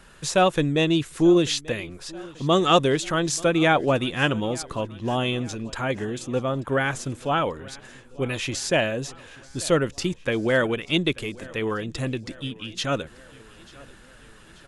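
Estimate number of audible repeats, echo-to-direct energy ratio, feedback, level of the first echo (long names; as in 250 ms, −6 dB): 3, −20.5 dB, 57%, −22.0 dB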